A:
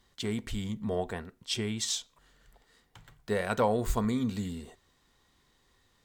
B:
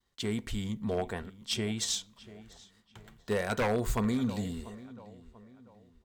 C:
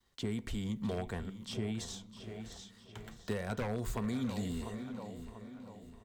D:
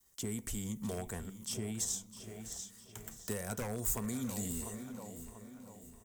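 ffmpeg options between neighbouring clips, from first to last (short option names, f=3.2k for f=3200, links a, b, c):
-filter_complex "[0:a]agate=range=-33dB:threshold=-59dB:ratio=3:detection=peak,asplit=2[a][b];[b]adelay=690,lowpass=f=2.9k:p=1,volume=-18dB,asplit=2[c][d];[d]adelay=690,lowpass=f=2.9k:p=1,volume=0.4,asplit=2[e][f];[f]adelay=690,lowpass=f=2.9k:p=1,volume=0.4[g];[a][c][e][g]amix=inputs=4:normalize=0,aeval=exprs='0.0794*(abs(mod(val(0)/0.0794+3,4)-2)-1)':c=same"
-filter_complex "[0:a]acrossover=split=220|1100[a][b][c];[a]acompressor=threshold=-41dB:ratio=4[d];[b]acompressor=threshold=-44dB:ratio=4[e];[c]acompressor=threshold=-51dB:ratio=4[f];[d][e][f]amix=inputs=3:normalize=0,aecho=1:1:654|1308|1962|2616:0.188|0.0904|0.0434|0.0208,volume=3.5dB"
-af "aexciter=amount=3.3:drive=9.8:freq=5.8k,volume=-3dB"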